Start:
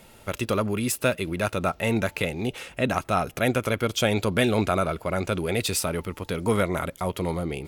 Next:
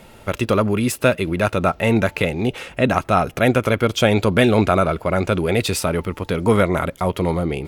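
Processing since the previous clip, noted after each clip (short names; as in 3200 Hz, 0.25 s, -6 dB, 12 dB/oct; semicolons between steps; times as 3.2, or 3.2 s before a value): high shelf 4100 Hz -8 dB; gain +7.5 dB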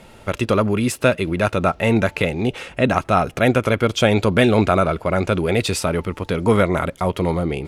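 LPF 11000 Hz 12 dB/oct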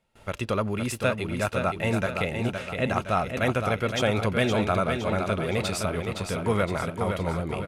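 gate with hold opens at -35 dBFS; bell 310 Hz -4.5 dB 1.1 oct; on a send: feedback echo 0.515 s, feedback 46%, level -6 dB; on the sum: gain -7.5 dB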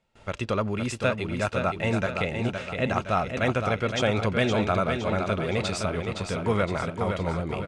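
LPF 8100 Hz 24 dB/oct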